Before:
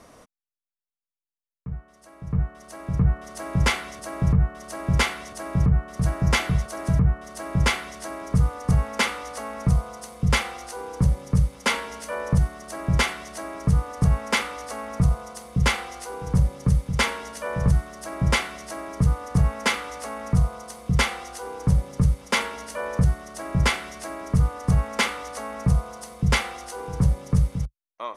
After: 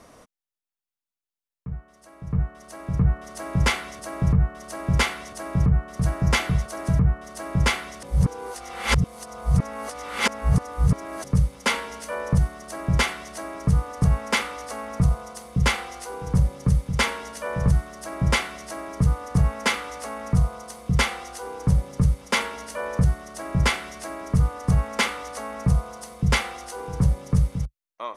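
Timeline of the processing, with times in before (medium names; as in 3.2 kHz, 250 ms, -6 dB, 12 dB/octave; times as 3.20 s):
8.03–11.24 s: reverse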